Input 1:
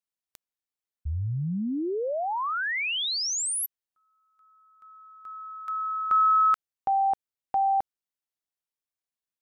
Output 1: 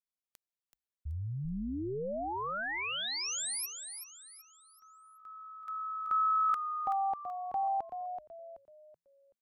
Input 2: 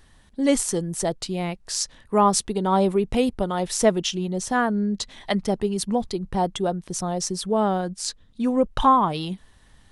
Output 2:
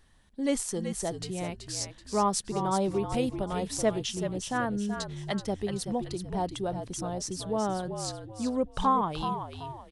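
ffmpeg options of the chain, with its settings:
ffmpeg -i in.wav -filter_complex "[0:a]asplit=5[link_01][link_02][link_03][link_04][link_05];[link_02]adelay=379,afreqshift=-57,volume=-8dB[link_06];[link_03]adelay=758,afreqshift=-114,volume=-16.9dB[link_07];[link_04]adelay=1137,afreqshift=-171,volume=-25.7dB[link_08];[link_05]adelay=1516,afreqshift=-228,volume=-34.6dB[link_09];[link_01][link_06][link_07][link_08][link_09]amix=inputs=5:normalize=0,volume=-8dB" out.wav

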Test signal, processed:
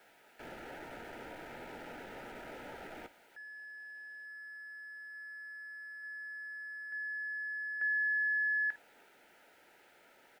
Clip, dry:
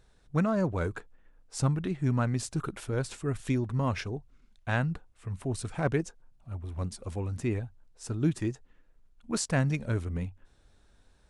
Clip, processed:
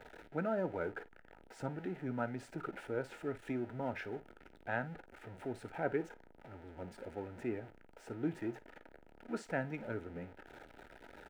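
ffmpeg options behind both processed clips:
ffmpeg -i in.wav -filter_complex "[0:a]aeval=exprs='val(0)+0.5*0.0168*sgn(val(0))':channel_layout=same,asuperstop=centerf=1100:order=8:qfactor=4.1,acrossover=split=250 2300:gain=0.141 1 0.0794[link_01][link_02][link_03];[link_01][link_02][link_03]amix=inputs=3:normalize=0,asplit=2[link_04][link_05];[link_05]aecho=0:1:17|54:0.168|0.133[link_06];[link_04][link_06]amix=inputs=2:normalize=0,volume=-5.5dB" out.wav

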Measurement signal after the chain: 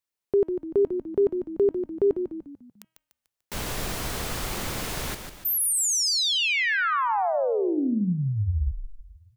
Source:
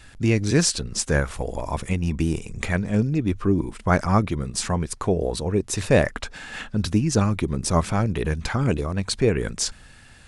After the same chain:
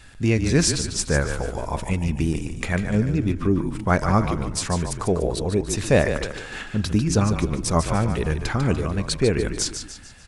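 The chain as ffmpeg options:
ffmpeg -i in.wav -filter_complex "[0:a]bandreject=frequency=319.4:width_type=h:width=4,bandreject=frequency=638.8:width_type=h:width=4,bandreject=frequency=958.2:width_type=h:width=4,bandreject=frequency=1277.6:width_type=h:width=4,bandreject=frequency=1597:width_type=h:width=4,bandreject=frequency=1916.4:width_type=h:width=4,bandreject=frequency=2235.8:width_type=h:width=4,bandreject=frequency=2555.2:width_type=h:width=4,bandreject=frequency=2874.6:width_type=h:width=4,bandreject=frequency=3194:width_type=h:width=4,asplit=6[link_01][link_02][link_03][link_04][link_05][link_06];[link_02]adelay=147,afreqshift=-39,volume=-8dB[link_07];[link_03]adelay=294,afreqshift=-78,volume=-15.1dB[link_08];[link_04]adelay=441,afreqshift=-117,volume=-22.3dB[link_09];[link_05]adelay=588,afreqshift=-156,volume=-29.4dB[link_10];[link_06]adelay=735,afreqshift=-195,volume=-36.5dB[link_11];[link_01][link_07][link_08][link_09][link_10][link_11]amix=inputs=6:normalize=0" out.wav

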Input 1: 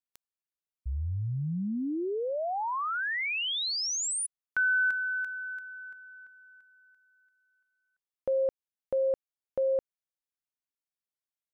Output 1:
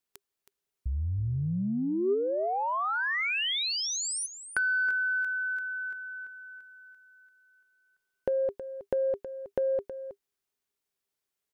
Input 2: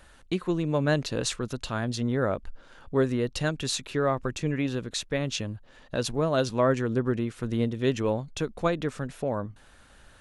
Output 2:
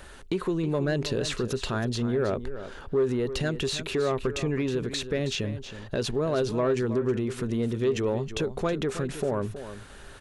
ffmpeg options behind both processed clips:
ffmpeg -i in.wav -filter_complex "[0:a]acrossover=split=3700[link_01][link_02];[link_02]acompressor=threshold=-38dB:ratio=4:attack=1:release=60[link_03];[link_01][link_03]amix=inputs=2:normalize=0,equalizer=frequency=400:width_type=o:width=0.2:gain=12,acompressor=threshold=-44dB:ratio=2:attack=30:release=23:detection=peak,asoftclip=type=tanh:threshold=-23.5dB,aecho=1:1:320:0.251,volume=7.5dB" out.wav

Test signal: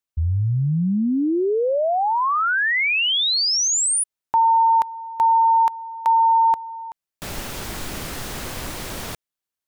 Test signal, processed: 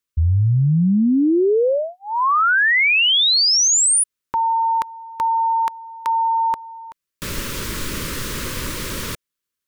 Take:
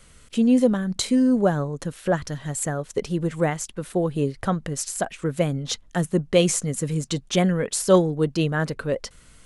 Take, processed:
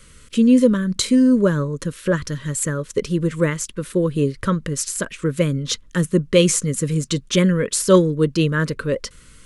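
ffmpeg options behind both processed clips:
ffmpeg -i in.wav -af "asuperstop=centerf=750:order=4:qfactor=1.8,volume=4.5dB" out.wav

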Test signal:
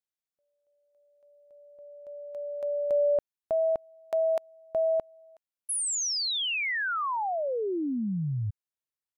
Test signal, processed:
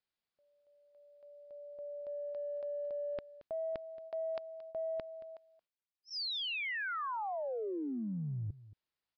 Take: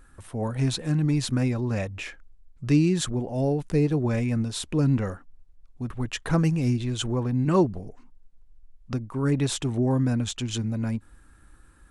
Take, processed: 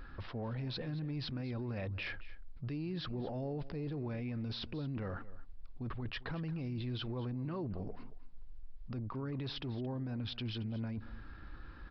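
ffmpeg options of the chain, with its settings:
ffmpeg -i in.wav -af "alimiter=limit=-21.5dB:level=0:latency=1,areverse,acompressor=threshold=-42dB:ratio=8:attack=2.3:release=39:knee=6:detection=rms,areverse,aecho=1:1:225:0.141,aresample=11025,aresample=44100,volume=5dB" out.wav

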